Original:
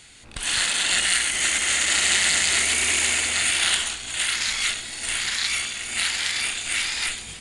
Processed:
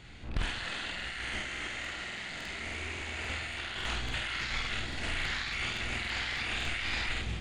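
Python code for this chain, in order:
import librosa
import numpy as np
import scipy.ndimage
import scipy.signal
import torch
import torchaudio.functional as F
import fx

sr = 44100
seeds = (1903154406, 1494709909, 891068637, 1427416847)

y = fx.low_shelf(x, sr, hz=160.0, db=7.0)
y = fx.over_compress(y, sr, threshold_db=-28.0, ratio=-1.0)
y = fx.spacing_loss(y, sr, db_at_10k=28)
y = fx.doubler(y, sr, ms=49.0, db=-3)
y = fx.buffer_crackle(y, sr, first_s=0.96, period_s=0.28, block=2048, kind='repeat')
y = fx.doppler_dist(y, sr, depth_ms=0.49)
y = y * librosa.db_to_amplitude(-2.0)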